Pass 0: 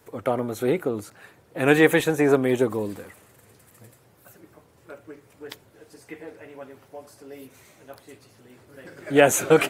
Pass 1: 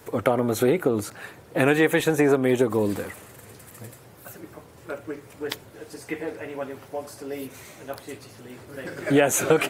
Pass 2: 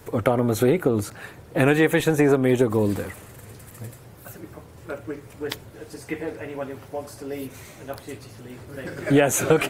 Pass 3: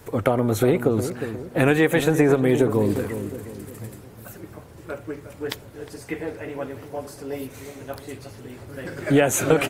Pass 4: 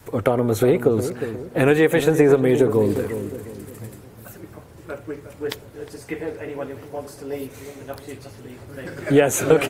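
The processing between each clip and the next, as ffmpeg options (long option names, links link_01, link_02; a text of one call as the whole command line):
ffmpeg -i in.wav -af "acompressor=threshold=-26dB:ratio=4,volume=8.5dB" out.wav
ffmpeg -i in.wav -af "lowshelf=frequency=120:gain=11.5" out.wav
ffmpeg -i in.wav -filter_complex "[0:a]asplit=2[link_01][link_02];[link_02]adelay=358,lowpass=frequency=850:poles=1,volume=-9dB,asplit=2[link_03][link_04];[link_04]adelay=358,lowpass=frequency=850:poles=1,volume=0.47,asplit=2[link_05][link_06];[link_06]adelay=358,lowpass=frequency=850:poles=1,volume=0.47,asplit=2[link_07][link_08];[link_08]adelay=358,lowpass=frequency=850:poles=1,volume=0.47,asplit=2[link_09][link_10];[link_10]adelay=358,lowpass=frequency=850:poles=1,volume=0.47[link_11];[link_01][link_03][link_05][link_07][link_09][link_11]amix=inputs=6:normalize=0" out.wav
ffmpeg -i in.wav -af "adynamicequalizer=threshold=0.0224:dfrequency=440:dqfactor=3.6:tfrequency=440:tqfactor=3.6:attack=5:release=100:ratio=0.375:range=2.5:mode=boostabove:tftype=bell" out.wav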